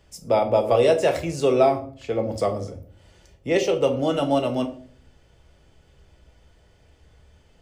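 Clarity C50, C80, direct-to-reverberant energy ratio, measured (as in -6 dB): 13.0 dB, 17.0 dB, 4.0 dB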